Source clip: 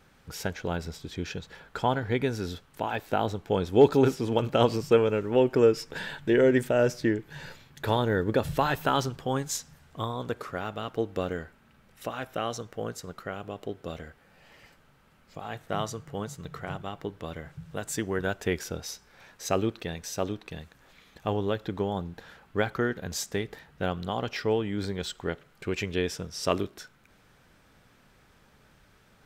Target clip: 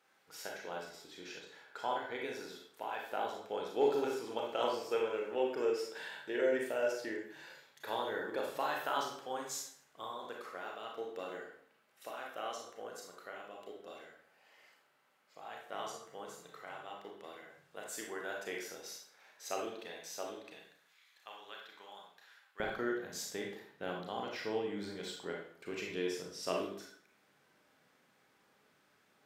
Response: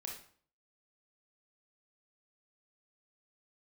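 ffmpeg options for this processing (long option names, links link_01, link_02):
-filter_complex "[0:a]asetnsamples=nb_out_samples=441:pad=0,asendcmd='20.58 highpass f 1400;22.6 highpass f 240',highpass=460[link_01];[1:a]atrim=start_sample=2205,asetrate=37485,aresample=44100[link_02];[link_01][link_02]afir=irnorm=-1:irlink=0,volume=-6.5dB"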